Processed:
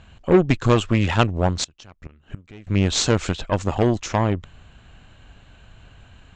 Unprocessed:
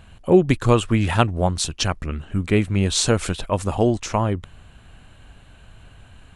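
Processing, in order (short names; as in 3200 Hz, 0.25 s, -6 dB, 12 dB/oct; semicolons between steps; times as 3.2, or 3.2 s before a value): added harmonics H 8 -21 dB, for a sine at -1.5 dBFS; elliptic low-pass 7200 Hz, stop band 50 dB; 1.64–2.67 flipped gate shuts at -19 dBFS, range -24 dB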